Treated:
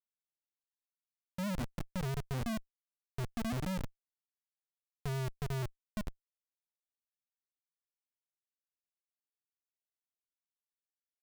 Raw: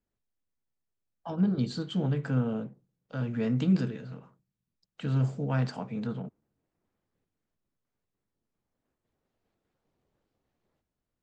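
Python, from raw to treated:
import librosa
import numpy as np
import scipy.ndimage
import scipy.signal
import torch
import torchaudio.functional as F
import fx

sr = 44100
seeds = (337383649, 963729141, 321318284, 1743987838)

y = fx.spec_topn(x, sr, count=2)
y = fx.dynamic_eq(y, sr, hz=180.0, q=5.5, threshold_db=-42.0, ratio=4.0, max_db=5)
y = fx.schmitt(y, sr, flips_db=-30.5)
y = y * 10.0 ** (-1.0 / 20.0)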